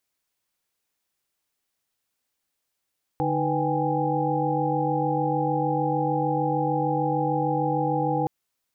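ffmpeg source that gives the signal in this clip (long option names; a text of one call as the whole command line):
ffmpeg -f lavfi -i "aevalsrc='0.0398*(sin(2*PI*146.83*t)+sin(2*PI*311.13*t)+sin(2*PI*493.88*t)+sin(2*PI*783.99*t)+sin(2*PI*830.61*t))':duration=5.07:sample_rate=44100" out.wav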